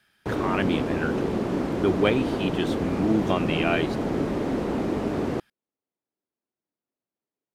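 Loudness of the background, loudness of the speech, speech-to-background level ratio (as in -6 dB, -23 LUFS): -27.5 LUFS, -27.5 LUFS, 0.0 dB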